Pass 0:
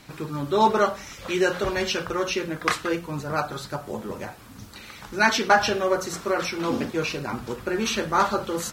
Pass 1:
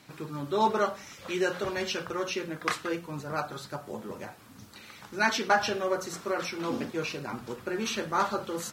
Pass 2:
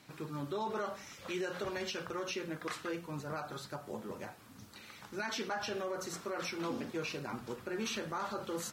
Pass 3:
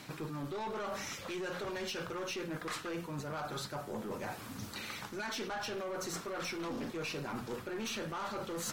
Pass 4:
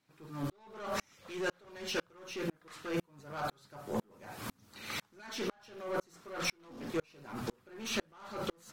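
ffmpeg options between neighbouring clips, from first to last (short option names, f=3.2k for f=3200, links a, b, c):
-af "highpass=99,volume=-6dB"
-af "alimiter=level_in=0.5dB:limit=-24dB:level=0:latency=1:release=83,volume=-0.5dB,volume=-4dB"
-af "aeval=exprs='(tanh(70.8*val(0)+0.15)-tanh(0.15))/70.8':c=same,areverse,acompressor=threshold=-49dB:ratio=6,areverse,volume=11.5dB"
-af "aeval=exprs='val(0)*pow(10,-39*if(lt(mod(-2*n/s,1),2*abs(-2)/1000),1-mod(-2*n/s,1)/(2*abs(-2)/1000),(mod(-2*n/s,1)-2*abs(-2)/1000)/(1-2*abs(-2)/1000))/20)':c=same,volume=9dB"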